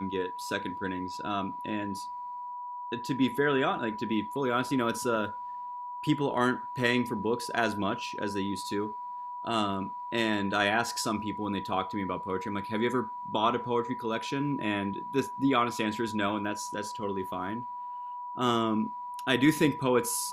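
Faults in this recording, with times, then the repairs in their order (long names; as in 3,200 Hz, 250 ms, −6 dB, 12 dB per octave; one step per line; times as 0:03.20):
whistle 980 Hz −36 dBFS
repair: notch filter 980 Hz, Q 30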